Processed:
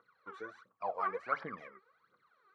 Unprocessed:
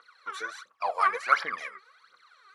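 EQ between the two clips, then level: band-pass 140 Hz, Q 1.2; +9.0 dB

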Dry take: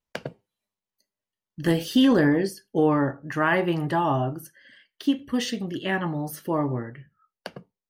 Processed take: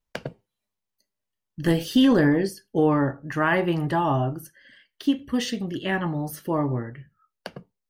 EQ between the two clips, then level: low shelf 66 Hz +11.5 dB; 0.0 dB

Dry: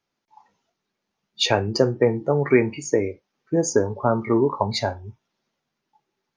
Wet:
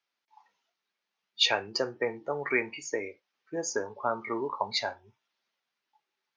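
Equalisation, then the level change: band-pass 3300 Hz, Q 0.53; air absorption 64 m; 0.0 dB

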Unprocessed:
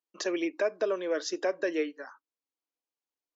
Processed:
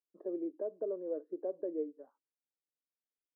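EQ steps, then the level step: ladder low-pass 640 Hz, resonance 30%; -2.5 dB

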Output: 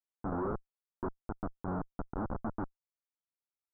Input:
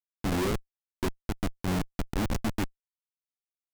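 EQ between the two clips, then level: Chebyshev low-pass 1400 Hz, order 5; low shelf 280 Hz -8 dB; -2.0 dB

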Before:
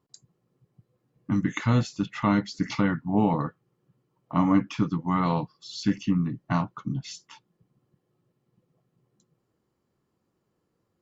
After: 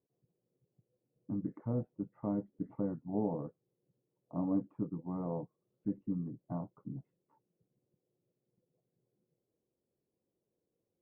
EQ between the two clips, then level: ladder low-pass 660 Hz, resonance 35%; air absorption 260 m; low shelf 400 Hz -8.5 dB; +1.0 dB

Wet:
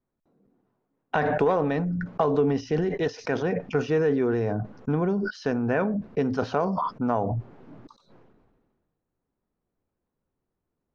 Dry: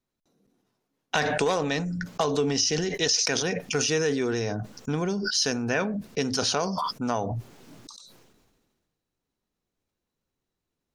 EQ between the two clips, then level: LPF 1300 Hz 12 dB/oct; +3.0 dB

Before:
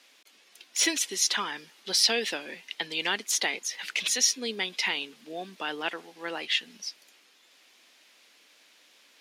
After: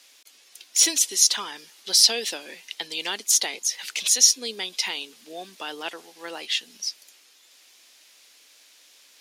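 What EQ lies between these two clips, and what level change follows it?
dynamic EQ 1900 Hz, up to -5 dB, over -40 dBFS, Q 1.2; tone controls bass -7 dB, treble +10 dB; 0.0 dB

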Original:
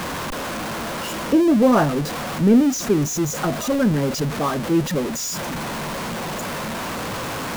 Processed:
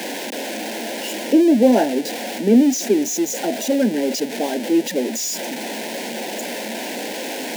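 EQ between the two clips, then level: steep high-pass 220 Hz 48 dB/oct; Butterworth band-stop 1200 Hz, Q 1.4; +2.5 dB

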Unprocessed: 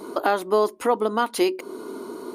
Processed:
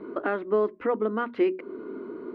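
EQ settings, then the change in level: LPF 2100 Hz 24 dB/oct; bell 840 Hz -12.5 dB 1 oct; notches 60/120/180/240 Hz; 0.0 dB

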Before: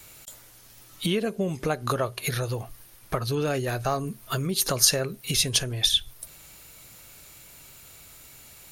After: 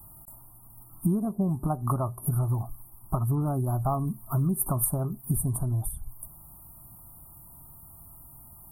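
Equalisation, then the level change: inverse Chebyshev band-stop 2000–5300 Hz, stop band 50 dB; low shelf 350 Hz +3.5 dB; fixed phaser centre 1800 Hz, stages 6; +2.5 dB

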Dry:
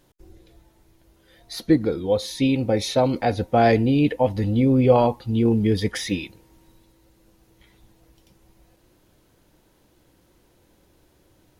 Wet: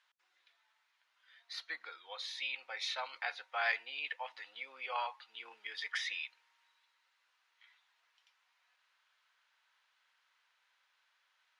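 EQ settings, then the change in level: HPF 1200 Hz 24 dB/oct; LPF 3300 Hz 12 dB/oct; -3.5 dB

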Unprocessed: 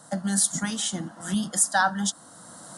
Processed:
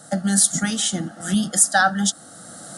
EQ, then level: Butterworth band-stop 1000 Hz, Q 3.3; +6.0 dB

